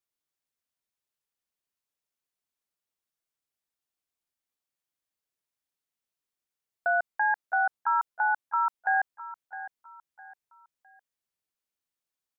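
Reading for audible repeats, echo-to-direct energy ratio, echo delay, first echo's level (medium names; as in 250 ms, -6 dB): 3, -14.0 dB, 659 ms, -14.5 dB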